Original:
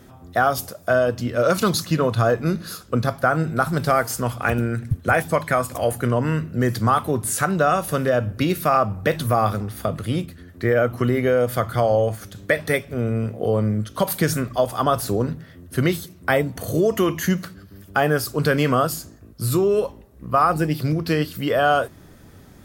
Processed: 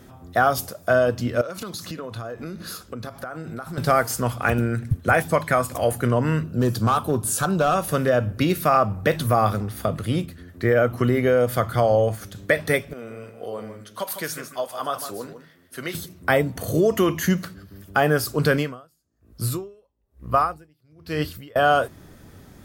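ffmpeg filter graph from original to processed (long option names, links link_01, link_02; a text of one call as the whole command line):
ffmpeg -i in.wav -filter_complex "[0:a]asettb=1/sr,asplit=3[link_01][link_02][link_03];[link_01]atrim=end=1.414[link_04];[link_02]atrim=start=1.41:end=3.78,asetpts=PTS-STARTPTS,afade=type=in:duration=0.004:curve=qsin,afade=type=out:start_time=2.366:duration=0.004:curve=qsin,equalizer=frequency=140:width=5.5:gain=-12.5,acompressor=threshold=-29dB:ratio=10:attack=3.2:release=140:knee=1:detection=peak[link_05];[link_03]atrim=start=3.776[link_06];[link_04][link_05]acrossfade=duration=0.004:curve1=hsin:curve2=qsin[link_07];[link_07][link_06]acrossfade=duration=0.004:curve1=qsin:curve2=hsin,asettb=1/sr,asplit=3[link_08][link_09][link_10];[link_08]atrim=end=6.434[link_11];[link_09]atrim=start=6.43:end=7.76,asetpts=PTS-STARTPTS,afade=type=in:duration=0.004:curve=qsin,afade=type=out:start_time=1.326:duration=0.004:curve=qsin,volume=13.5dB,asoftclip=hard,volume=-13.5dB,equalizer=frequency=2000:width_type=o:width=0.31:gain=-15[link_12];[link_10]atrim=start=7.756[link_13];[link_11][link_12]acrossfade=duration=0.004:curve1=hsin:curve2=qsin[link_14];[link_14][link_13]acrossfade=duration=0.004:curve1=qsin:curve2=hsin,asettb=1/sr,asplit=3[link_15][link_16][link_17];[link_15]atrim=end=12.934[link_18];[link_16]atrim=start=12.93:end=15.95,asetpts=PTS-STARTPTS,afade=type=in:duration=0.004:curve=qsin,afade=type=out:start_time=3.016:duration=0.004:curve=qsin,flanger=delay=3:depth=4.6:regen=-64:speed=1.8:shape=triangular,highpass=frequency=800:poles=1,aecho=1:1:153:0.316,atrim=end_sample=133182[link_19];[link_17]atrim=start=15.946[link_20];[link_18][link_19]acrossfade=duration=0.004:curve1=hsin:curve2=qsin[link_21];[link_21][link_20]acrossfade=duration=0.004:curve1=qsin:curve2=hsin,asettb=1/sr,asplit=3[link_22][link_23][link_24];[link_22]atrim=end=18.524[link_25];[link_23]atrim=start=18.52:end=21.56,asetpts=PTS-STARTPTS,afade=type=in:duration=0.004:curve=qsin,afade=type=out:start_time=3.036:duration=0.004:curve=qsin,asubboost=boost=7.5:cutoff=72,aeval=exprs='val(0)*pow(10,-39*(0.5-0.5*cos(2*PI*1.1*n/s))/20)':channel_layout=same[link_26];[link_24]atrim=start=21.556[link_27];[link_25][link_26]acrossfade=duration=0.004:curve1=hsin:curve2=qsin[link_28];[link_28][link_27]acrossfade=duration=0.004:curve1=qsin:curve2=hsin" out.wav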